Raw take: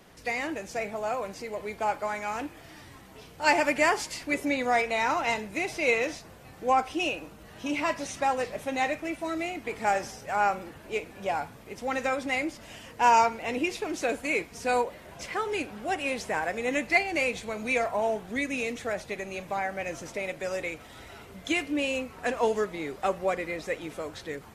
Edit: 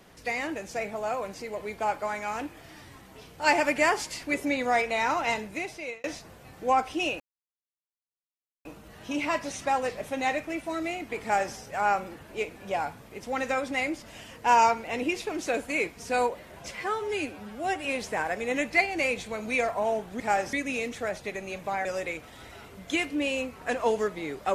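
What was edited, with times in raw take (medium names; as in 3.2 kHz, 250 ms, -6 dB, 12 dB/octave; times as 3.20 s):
5.42–6.04 s: fade out
7.20 s: insert silence 1.45 s
9.77–10.10 s: copy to 18.37 s
15.26–16.02 s: stretch 1.5×
19.69–20.42 s: delete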